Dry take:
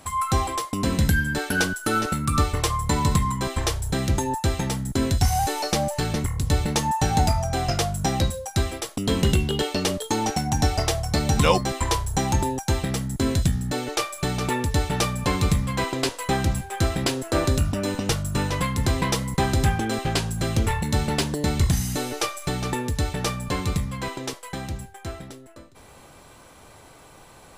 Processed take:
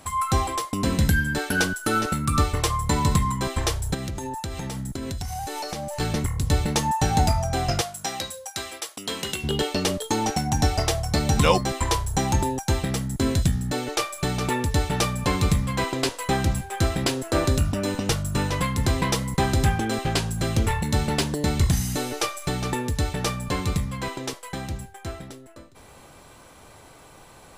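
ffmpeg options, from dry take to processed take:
-filter_complex "[0:a]asettb=1/sr,asplit=3[a][b][c];[a]atrim=end=3.944[d];[b]atrim=start=3.94:end=6,asetpts=PTS-STARTPTS,afade=t=in:d=0.004:c=qsin,afade=t=out:st=2.056:d=0.004:c=qsin,acompressor=threshold=-27dB:ratio=12:attack=3.2:release=140:knee=1:detection=peak[e];[c]atrim=start=5.996[f];[d][e]acrossfade=d=0.004:c1=hsin:c2=qsin[g];[g][f]acrossfade=d=0.004:c1=qsin:c2=hsin,asettb=1/sr,asplit=3[h][i][j];[h]atrim=end=7.814[k];[i]atrim=start=7.81:end=9.44,asetpts=PTS-STARTPTS,afade=t=in:d=0.004:c=qsin,afade=t=out:st=1.626:d=0.004:c=qsin,highpass=f=1.1k:p=1[l];[j]atrim=start=9.436[m];[k][l]acrossfade=d=0.004:c1=hsin:c2=qsin[n];[n][m]acrossfade=d=0.004:c1=qsin:c2=hsin"

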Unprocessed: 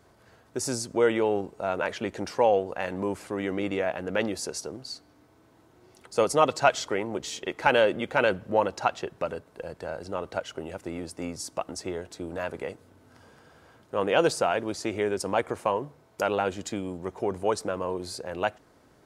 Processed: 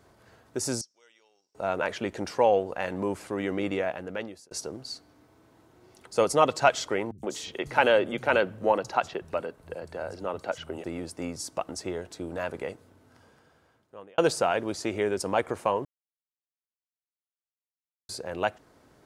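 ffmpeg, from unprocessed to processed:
-filter_complex "[0:a]asettb=1/sr,asplit=3[a][b][c];[a]atrim=end=0.814[d];[b]atrim=start=0.81:end=1.55,asetpts=PTS-STARTPTS,afade=t=in:d=0.004:c=qsin,afade=t=out:st=0.736:d=0.004:c=qsin,bandpass=f=5.5k:t=q:w=11[e];[c]atrim=start=1.546[f];[d][e]acrossfade=d=0.004:c1=hsin:c2=qsin[g];[g][f]acrossfade=d=0.004:c1=qsin:c2=hsin,asettb=1/sr,asplit=3[h][i][j];[h]atrim=end=7.114[k];[i]atrim=start=7.11:end=10.84,asetpts=PTS-STARTPTS,afade=t=in:d=0.004:c=qsin,afade=t=out:st=3.726:d=0.004:c=qsin,acrossover=split=150|5200[l][m][n];[n]adelay=70[o];[m]adelay=120[p];[l][p][o]amix=inputs=3:normalize=0,atrim=end_sample=164493[q];[j]atrim=start=10.836[r];[k][q]acrossfade=d=0.004:c1=hsin:c2=qsin[s];[s][r]acrossfade=d=0.004:c1=qsin:c2=hsin,asplit=5[t][u][v][w][x];[t]atrim=end=4.51,asetpts=PTS-STARTPTS,afade=t=out:st=3.74:d=0.77[y];[u]atrim=start=4.51:end=14.18,asetpts=PTS-STARTPTS,afade=t=in:d=0.004:c=hsin,afade=t=out:st=8.18:d=1.49[z];[v]atrim=start=14.18:end=15.85,asetpts=PTS-STARTPTS,afade=t=in:d=0.004:c=hsin,afade=t=out:st=1.666:d=0.004:c=hsin[aa];[w]atrim=start=15.85:end=18.09,asetpts=PTS-STARTPTS,volume=0[ab];[x]atrim=start=18.09,asetpts=PTS-STARTPTS,afade=t=in:d=0.004:c=hsin[ac];[y][z][aa][ab][ac]concat=n=5:v=0:a=1"

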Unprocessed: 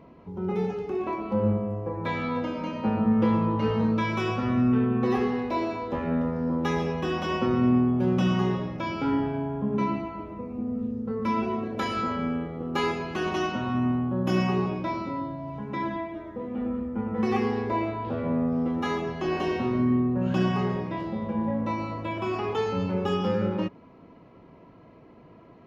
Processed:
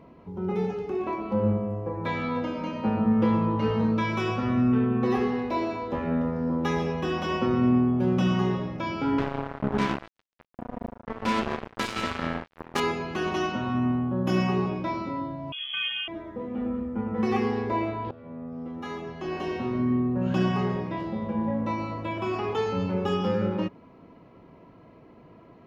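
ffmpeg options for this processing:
-filter_complex "[0:a]asettb=1/sr,asplit=3[a][b][c];[a]atrim=end=9.184[d];[b]atrim=start=9.18:end=12.8,asetpts=PTS-STARTPTS,afade=t=in:d=0.004:c=qsin,afade=t=out:st=3.616:d=0.004:c=qsin,acrusher=bits=3:mix=0:aa=0.5[e];[c]atrim=start=12.796[f];[d][e]acrossfade=d=0.004:c1=hsin:c2=qsin[g];[g][f]acrossfade=d=0.004:c1=qsin:c2=hsin,asettb=1/sr,asplit=3[h][i][j];[h]atrim=end=15.524[k];[i]atrim=start=15.52:end=16.08,asetpts=PTS-STARTPTS,afade=t=in:d=0.004:c=qsin,afade=t=out:st=0.556:d=0.004:c=qsin,lowpass=f=3k:t=q:w=0.5098,lowpass=f=3k:t=q:w=0.6013,lowpass=f=3k:t=q:w=0.9,lowpass=f=3k:t=q:w=2.563,afreqshift=-3500[l];[j]atrim=start=16.076[m];[k][l]acrossfade=d=0.004:c1=hsin:c2=qsin[n];[n][m]acrossfade=d=0.004:c1=qsin:c2=hsin,asplit=2[o][p];[o]atrim=end=18.11,asetpts=PTS-STARTPTS,afade=t=out:st=18.106:d=0.004:c=hsin:silence=0.112202[q];[p]atrim=start=18.11,asetpts=PTS-STARTPTS,afade=t=in:d=2.22:silence=0.112202[r];[q][r]concat=n=2:v=0:a=1"

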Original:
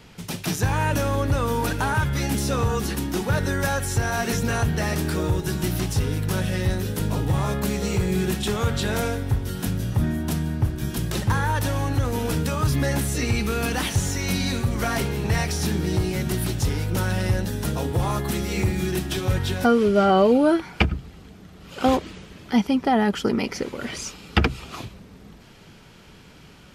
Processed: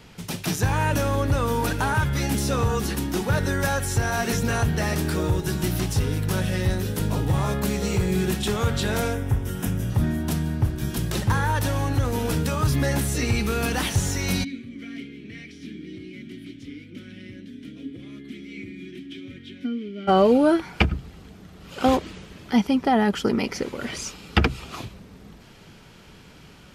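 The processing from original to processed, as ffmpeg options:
-filter_complex "[0:a]asettb=1/sr,asplit=3[a][b][c];[a]atrim=end=9.134[d];[b]atrim=start=9.13:end=9.9,asetpts=PTS-STARTPTS,afade=t=in:d=0.004:c=qsin,afade=t=out:st=0.766:d=0.004:c=qsin,equalizer=f=4.3k:t=o:w=0.35:g=-13[e];[c]atrim=start=9.896[f];[d][e]acrossfade=d=0.004:c1=hsin:c2=qsin[g];[g][f]acrossfade=d=0.004:c1=qsin:c2=hsin,asplit=3[h][i][j];[h]afade=t=out:st=14.43:d=0.02[k];[i]asplit=3[l][m][n];[l]bandpass=f=270:t=q:w=8,volume=0dB[o];[m]bandpass=f=2.29k:t=q:w=8,volume=-6dB[p];[n]bandpass=f=3.01k:t=q:w=8,volume=-9dB[q];[o][p][q]amix=inputs=3:normalize=0,afade=t=in:st=14.43:d=0.02,afade=t=out:st=20.07:d=0.02[r];[j]afade=t=in:st=20.07:d=0.02[s];[k][r][s]amix=inputs=3:normalize=0"

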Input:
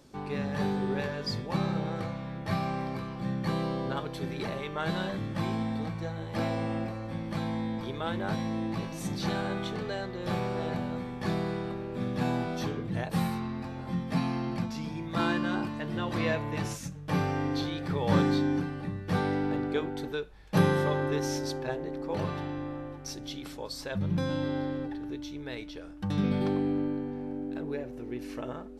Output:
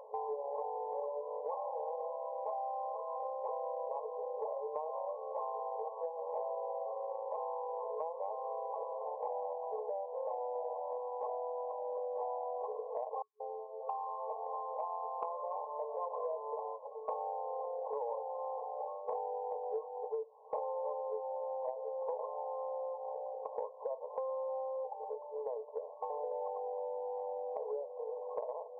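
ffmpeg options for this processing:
-filter_complex "[0:a]asettb=1/sr,asplit=3[a][b][c];[a]atrim=end=13.224[d];[b]atrim=start=13.22:end=15.23,asetpts=PTS-STARTPTS,afade=t=in:d=0.004:c=qsin,afade=t=out:st=2.006:d=0.004:c=qsin,acrossover=split=510|5400[e][f][g];[e]adelay=180[h];[f]adelay=670[i];[h][i][g]amix=inputs=3:normalize=0,atrim=end_sample=88641[j];[c]atrim=start=15.226[k];[d][j]acrossfade=d=0.004:c1=hsin:c2=qsin[l];[l][k]acrossfade=d=0.004:c1=qsin:c2=hsin,afftfilt=real='re*between(b*sr/4096,430,1100)':imag='im*between(b*sr/4096,430,1100)':win_size=4096:overlap=0.75,acompressor=threshold=-50dB:ratio=8,volume=13.5dB"

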